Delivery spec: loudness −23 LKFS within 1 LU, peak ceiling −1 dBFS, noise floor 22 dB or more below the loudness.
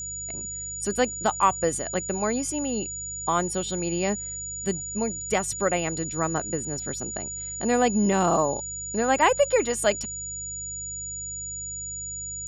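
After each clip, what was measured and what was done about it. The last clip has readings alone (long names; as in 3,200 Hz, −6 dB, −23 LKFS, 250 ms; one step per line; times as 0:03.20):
mains hum 50 Hz; hum harmonics up to 150 Hz; level of the hum −42 dBFS; interfering tone 6,900 Hz; level of the tone −32 dBFS; integrated loudness −26.0 LKFS; sample peak −8.0 dBFS; target loudness −23.0 LKFS
→ hum removal 50 Hz, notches 3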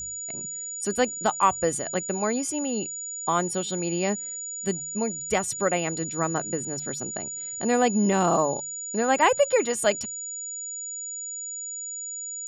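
mains hum none found; interfering tone 6,900 Hz; level of the tone −32 dBFS
→ notch filter 6,900 Hz, Q 30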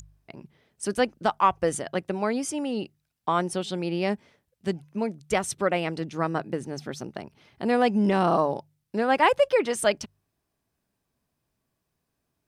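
interfering tone none found; integrated loudness −26.5 LKFS; sample peak −8.5 dBFS; target loudness −23.0 LKFS
→ level +3.5 dB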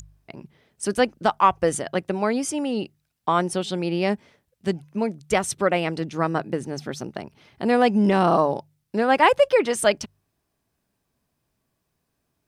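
integrated loudness −23.0 LKFS; sample peak −5.0 dBFS; background noise floor −76 dBFS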